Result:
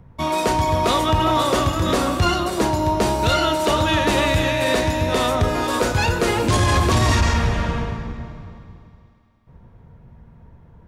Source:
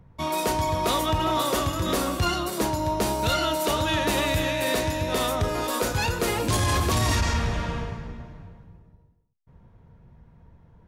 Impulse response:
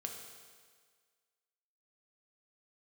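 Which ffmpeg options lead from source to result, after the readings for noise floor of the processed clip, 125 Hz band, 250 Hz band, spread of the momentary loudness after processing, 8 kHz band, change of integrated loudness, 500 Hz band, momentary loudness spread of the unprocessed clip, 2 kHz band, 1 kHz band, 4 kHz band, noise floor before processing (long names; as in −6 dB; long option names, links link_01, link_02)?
−49 dBFS, +6.5 dB, +6.5 dB, 7 LU, +2.0 dB, +5.5 dB, +6.0 dB, 6 LU, +6.0 dB, +6.0 dB, +4.5 dB, −56 dBFS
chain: -filter_complex "[0:a]acrossover=split=9600[link_01][link_02];[link_02]acompressor=threshold=-52dB:ratio=4:attack=1:release=60[link_03];[link_01][link_03]amix=inputs=2:normalize=0,asplit=2[link_04][link_05];[1:a]atrim=start_sample=2205,asetrate=23373,aresample=44100,lowpass=3800[link_06];[link_05][link_06]afir=irnorm=-1:irlink=0,volume=-11dB[link_07];[link_04][link_07]amix=inputs=2:normalize=0,volume=4dB"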